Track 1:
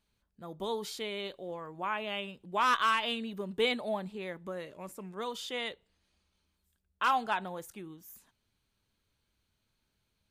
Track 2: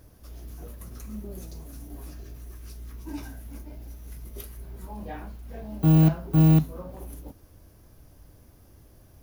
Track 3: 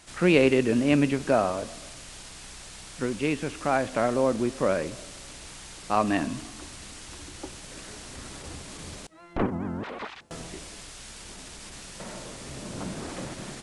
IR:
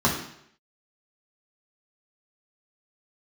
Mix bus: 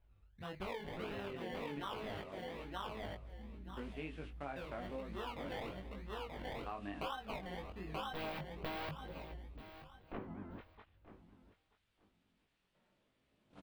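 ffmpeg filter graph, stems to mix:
-filter_complex "[0:a]lowshelf=f=140:t=q:w=1.5:g=13.5,acrusher=samples=27:mix=1:aa=0.000001:lfo=1:lforange=16.2:lforate=1.5,volume=1.5dB,asplit=3[a][b][c];[a]atrim=end=2.22,asetpts=PTS-STARTPTS,afade=t=out:st=2.216:d=0.004:c=hsin[d];[b]atrim=start=2.22:end=4.56,asetpts=PTS-STARTPTS,volume=0[e];[c]atrim=start=4.56,asetpts=PTS-STARTPTS,afade=t=in:d=0.004:c=hsin[f];[d][e][f]concat=n=3:v=0:a=1,asplit=3[g][h][i];[h]volume=-3.5dB[j];[1:a]aeval=exprs='(mod(6.68*val(0)+1,2)-1)/6.68':c=same,afwtdn=0.0224,adelay=2300,volume=-8.5dB,asplit=2[k][l];[l]volume=-22dB[m];[2:a]agate=range=-21dB:threshold=-33dB:ratio=16:detection=peak,adelay=750,volume=-13.5dB,asplit=2[n][o];[o]volume=-17.5dB[p];[i]apad=whole_len=633725[q];[n][q]sidechaincompress=threshold=-44dB:ratio=8:attack=16:release=163[r];[j][m][p]amix=inputs=3:normalize=0,aecho=0:1:931|1862|2793:1|0.18|0.0324[s];[g][k][r][s]amix=inputs=4:normalize=0,highshelf=f=4.5k:t=q:w=1.5:g=-11.5,flanger=delay=18.5:depth=3.5:speed=0.98,acompressor=threshold=-40dB:ratio=6"

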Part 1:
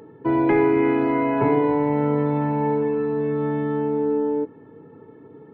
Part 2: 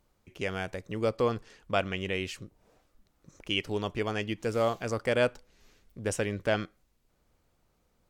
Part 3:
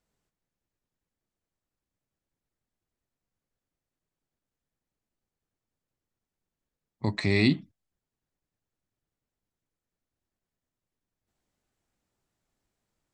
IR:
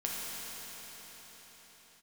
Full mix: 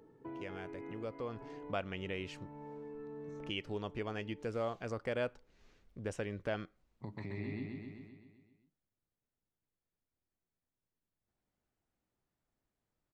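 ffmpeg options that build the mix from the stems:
-filter_complex "[0:a]volume=-16.5dB[a];[1:a]aemphasis=mode=reproduction:type=50fm,volume=-4dB,afade=t=in:st=1.27:d=0.28:silence=0.446684,asplit=2[b][c];[2:a]acrossover=split=3000[d][e];[e]acompressor=threshold=-46dB:ratio=4:attack=1:release=60[f];[d][f]amix=inputs=2:normalize=0,highshelf=f=3.5k:g=-11,volume=-5dB,asplit=2[g][h];[h]volume=-11.5dB[i];[c]apad=whole_len=244129[j];[a][j]sidechaincompress=threshold=-44dB:ratio=8:attack=16:release=909[k];[k][g]amix=inputs=2:normalize=0,acompressor=threshold=-48dB:ratio=2,volume=0dB[l];[i]aecho=0:1:129|258|387|516|645|774|903|1032|1161:1|0.59|0.348|0.205|0.121|0.0715|0.0422|0.0249|0.0147[m];[b][l][m]amix=inputs=3:normalize=0,acompressor=threshold=-43dB:ratio=1.5"

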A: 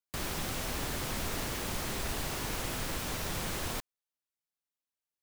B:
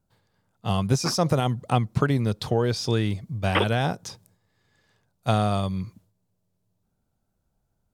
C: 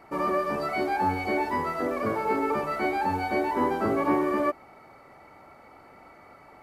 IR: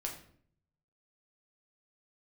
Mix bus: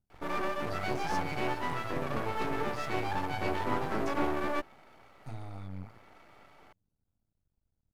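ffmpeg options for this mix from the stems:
-filter_complex "[0:a]adynamicsmooth=sensitivity=4.5:basefreq=1.3k,volume=-15.5dB[a];[1:a]equalizer=f=60:w=0.38:g=13,acompressor=threshold=-25dB:ratio=2.5,bandreject=f=60:t=h:w=6,bandreject=f=120:t=h:w=6,volume=-12dB[b];[2:a]adelay=100,volume=-2.5dB[c];[a][b][c]amix=inputs=3:normalize=0,aeval=exprs='max(val(0),0)':c=same"

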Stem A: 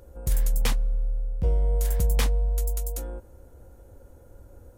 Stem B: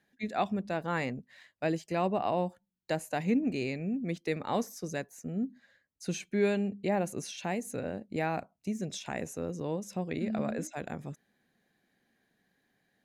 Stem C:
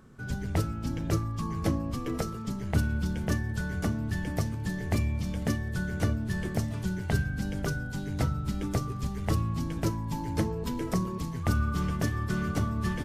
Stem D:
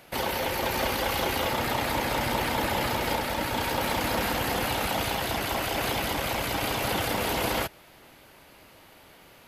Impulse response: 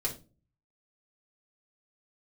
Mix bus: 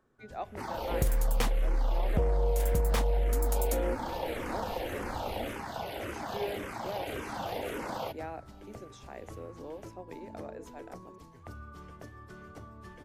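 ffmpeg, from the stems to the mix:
-filter_complex "[0:a]aeval=exprs='0.168*(abs(mod(val(0)/0.168+3,4)-2)-1)':c=same,adelay=750,volume=3dB[a];[1:a]highpass=f=260:w=0.5412,highpass=f=260:w=1.3066,volume=-16dB[b];[2:a]acrossover=split=260[c][d];[d]acompressor=threshold=-32dB:ratio=6[e];[c][e]amix=inputs=2:normalize=0,equalizer=f=180:w=0.95:g=-9,volume=-18.5dB[f];[3:a]highshelf=f=11k:g=-5,asplit=2[g][h];[h]afreqshift=-1.8[i];[g][i]amix=inputs=2:normalize=1,adelay=450,volume=-12.5dB[j];[a][b][f][j]amix=inputs=4:normalize=0,equalizer=f=540:w=0.4:g=9,acompressor=threshold=-24dB:ratio=6"

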